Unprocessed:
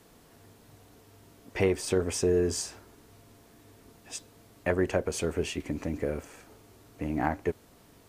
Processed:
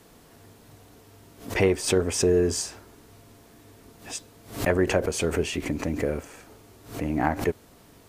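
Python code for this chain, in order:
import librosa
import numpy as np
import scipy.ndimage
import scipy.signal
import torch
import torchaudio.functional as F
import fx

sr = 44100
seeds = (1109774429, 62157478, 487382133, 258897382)

y = fx.pre_swell(x, sr, db_per_s=130.0)
y = F.gain(torch.from_numpy(y), 4.0).numpy()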